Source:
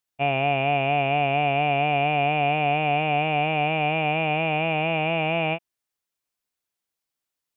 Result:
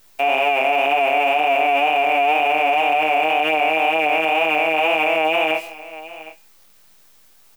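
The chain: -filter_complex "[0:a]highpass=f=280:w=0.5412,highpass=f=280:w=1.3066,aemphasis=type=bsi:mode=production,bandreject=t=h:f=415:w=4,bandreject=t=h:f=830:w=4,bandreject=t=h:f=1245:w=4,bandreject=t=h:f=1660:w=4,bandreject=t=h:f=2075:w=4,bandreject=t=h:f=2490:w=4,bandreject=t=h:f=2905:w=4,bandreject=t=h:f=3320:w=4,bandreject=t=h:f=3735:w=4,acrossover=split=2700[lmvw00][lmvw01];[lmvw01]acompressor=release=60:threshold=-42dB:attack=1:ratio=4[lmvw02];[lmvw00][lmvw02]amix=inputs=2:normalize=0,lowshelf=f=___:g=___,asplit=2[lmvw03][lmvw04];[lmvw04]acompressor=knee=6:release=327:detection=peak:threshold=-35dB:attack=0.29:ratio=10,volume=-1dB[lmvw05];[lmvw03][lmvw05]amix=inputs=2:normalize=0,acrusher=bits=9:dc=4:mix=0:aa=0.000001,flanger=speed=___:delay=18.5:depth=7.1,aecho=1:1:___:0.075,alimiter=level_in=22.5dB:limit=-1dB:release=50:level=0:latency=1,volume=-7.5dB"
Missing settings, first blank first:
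440, -2.5, 2, 752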